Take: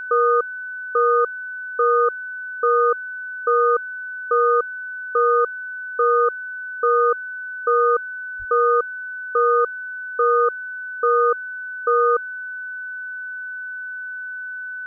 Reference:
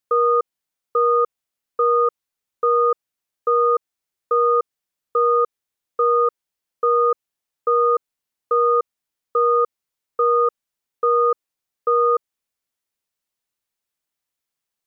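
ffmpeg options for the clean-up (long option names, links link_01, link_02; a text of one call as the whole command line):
ffmpeg -i in.wav -filter_complex "[0:a]bandreject=frequency=1500:width=30,asplit=3[link_01][link_02][link_03];[link_01]afade=type=out:start_time=8.38:duration=0.02[link_04];[link_02]highpass=frequency=140:width=0.5412,highpass=frequency=140:width=1.3066,afade=type=in:start_time=8.38:duration=0.02,afade=type=out:start_time=8.5:duration=0.02[link_05];[link_03]afade=type=in:start_time=8.5:duration=0.02[link_06];[link_04][link_05][link_06]amix=inputs=3:normalize=0" out.wav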